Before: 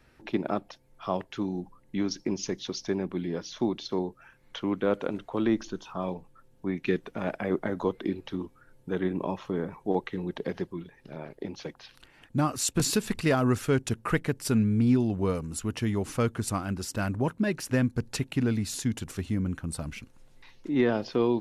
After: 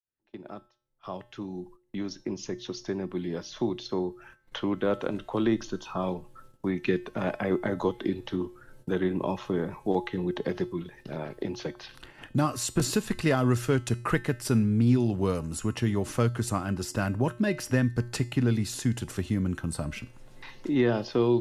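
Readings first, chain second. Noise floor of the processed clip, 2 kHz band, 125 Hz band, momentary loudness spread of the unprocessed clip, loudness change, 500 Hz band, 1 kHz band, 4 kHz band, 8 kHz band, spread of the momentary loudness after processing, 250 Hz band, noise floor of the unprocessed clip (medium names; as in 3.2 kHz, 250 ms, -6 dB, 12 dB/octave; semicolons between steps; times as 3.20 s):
-63 dBFS, +0.5 dB, +2.0 dB, 12 LU, +0.5 dB, +0.5 dB, +0.5 dB, -0.5 dB, -2.0 dB, 15 LU, 0.0 dB, -60 dBFS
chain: fade-in on the opening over 5.58 s; band-stop 2.3 kHz, Q 20; gate -57 dBFS, range -18 dB; feedback comb 120 Hz, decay 0.4 s, harmonics odd, mix 60%; three bands compressed up and down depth 40%; trim +8 dB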